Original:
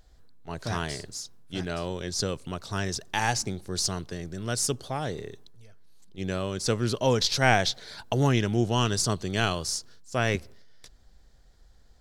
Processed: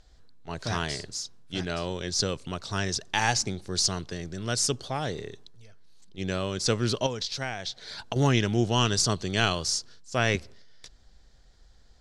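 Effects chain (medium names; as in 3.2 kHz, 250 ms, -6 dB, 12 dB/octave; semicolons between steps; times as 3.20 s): low-pass 6.4 kHz 12 dB/octave; treble shelf 2.7 kHz +6.5 dB; 7.06–8.16 s: compression 10:1, threshold -29 dBFS, peak gain reduction 15.5 dB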